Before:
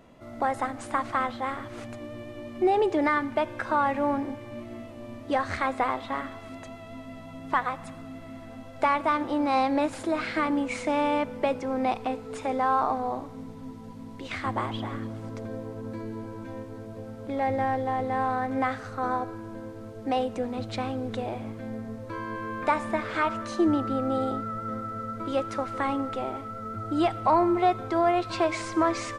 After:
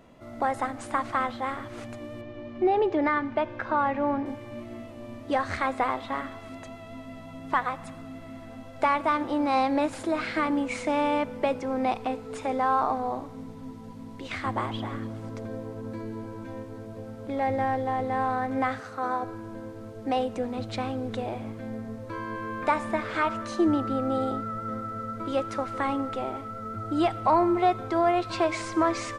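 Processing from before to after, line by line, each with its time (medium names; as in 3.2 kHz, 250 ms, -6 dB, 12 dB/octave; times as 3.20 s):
2.21–4.26 s: distance through air 160 m
18.80–19.23 s: high-pass 280 Hz 6 dB/octave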